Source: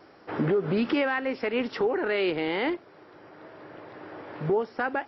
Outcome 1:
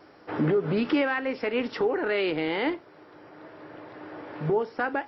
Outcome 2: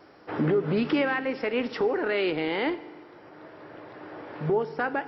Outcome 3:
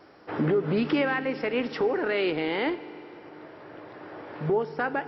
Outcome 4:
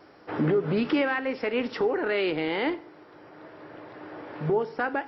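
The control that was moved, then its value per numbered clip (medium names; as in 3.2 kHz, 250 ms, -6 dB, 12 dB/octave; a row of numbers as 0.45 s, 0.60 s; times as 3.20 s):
FDN reverb, RT60: 0.3 s, 1.7 s, 3.7 s, 0.69 s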